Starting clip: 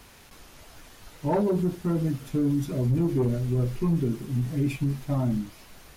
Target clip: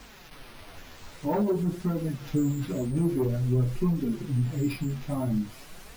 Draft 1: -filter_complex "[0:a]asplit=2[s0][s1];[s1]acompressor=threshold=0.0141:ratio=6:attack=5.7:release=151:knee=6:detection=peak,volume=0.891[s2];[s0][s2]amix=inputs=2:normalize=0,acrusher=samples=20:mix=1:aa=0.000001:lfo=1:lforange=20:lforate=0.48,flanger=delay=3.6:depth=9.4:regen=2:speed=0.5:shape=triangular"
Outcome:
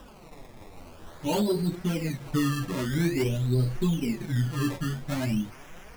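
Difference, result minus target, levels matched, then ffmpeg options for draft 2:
decimation with a swept rate: distortion +12 dB
-filter_complex "[0:a]asplit=2[s0][s1];[s1]acompressor=threshold=0.0141:ratio=6:attack=5.7:release=151:knee=6:detection=peak,volume=0.891[s2];[s0][s2]amix=inputs=2:normalize=0,acrusher=samples=4:mix=1:aa=0.000001:lfo=1:lforange=4:lforate=0.48,flanger=delay=3.6:depth=9.4:regen=2:speed=0.5:shape=triangular"

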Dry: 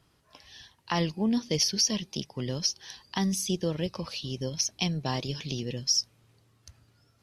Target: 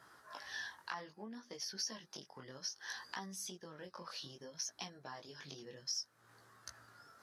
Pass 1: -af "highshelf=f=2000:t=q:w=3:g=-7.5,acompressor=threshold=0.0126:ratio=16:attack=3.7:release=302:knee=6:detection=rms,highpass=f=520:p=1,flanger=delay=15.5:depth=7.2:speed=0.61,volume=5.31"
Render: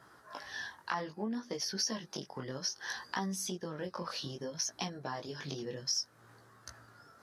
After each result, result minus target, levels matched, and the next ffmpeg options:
compression: peak gain reduction -6 dB; 500 Hz band +4.0 dB
-af "highshelf=f=2000:t=q:w=3:g=-7.5,acompressor=threshold=0.00596:ratio=16:attack=3.7:release=302:knee=6:detection=rms,highpass=f=520:p=1,flanger=delay=15.5:depth=7.2:speed=0.61,volume=5.31"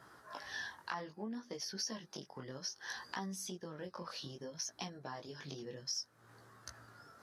500 Hz band +4.0 dB
-af "highshelf=f=2000:t=q:w=3:g=-7.5,acompressor=threshold=0.00596:ratio=16:attack=3.7:release=302:knee=6:detection=rms,highpass=f=1200:p=1,flanger=delay=15.5:depth=7.2:speed=0.61,volume=5.31"

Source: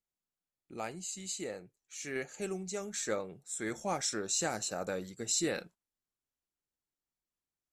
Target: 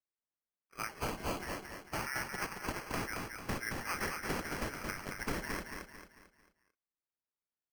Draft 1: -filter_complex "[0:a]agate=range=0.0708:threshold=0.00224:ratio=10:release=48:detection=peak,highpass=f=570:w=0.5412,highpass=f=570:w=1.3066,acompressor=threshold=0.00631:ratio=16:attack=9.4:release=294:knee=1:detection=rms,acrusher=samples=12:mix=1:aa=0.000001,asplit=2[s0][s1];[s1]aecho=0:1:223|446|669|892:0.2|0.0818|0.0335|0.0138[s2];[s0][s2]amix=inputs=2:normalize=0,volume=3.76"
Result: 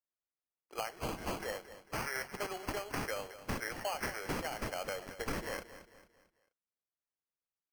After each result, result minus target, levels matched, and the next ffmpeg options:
echo-to-direct -9.5 dB; 500 Hz band +3.5 dB
-filter_complex "[0:a]agate=range=0.0708:threshold=0.00224:ratio=10:release=48:detection=peak,highpass=f=570:w=0.5412,highpass=f=570:w=1.3066,acompressor=threshold=0.00631:ratio=16:attack=9.4:release=294:knee=1:detection=rms,acrusher=samples=12:mix=1:aa=0.000001,asplit=2[s0][s1];[s1]aecho=0:1:223|446|669|892|1115:0.596|0.244|0.1|0.0411|0.0168[s2];[s0][s2]amix=inputs=2:normalize=0,volume=3.76"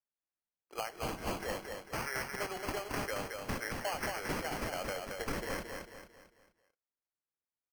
500 Hz band +3.5 dB
-filter_complex "[0:a]agate=range=0.0708:threshold=0.00224:ratio=10:release=48:detection=peak,highpass=f=1600:w=0.5412,highpass=f=1600:w=1.3066,acompressor=threshold=0.00631:ratio=16:attack=9.4:release=294:knee=1:detection=rms,acrusher=samples=12:mix=1:aa=0.000001,asplit=2[s0][s1];[s1]aecho=0:1:223|446|669|892|1115:0.596|0.244|0.1|0.0411|0.0168[s2];[s0][s2]amix=inputs=2:normalize=0,volume=3.76"

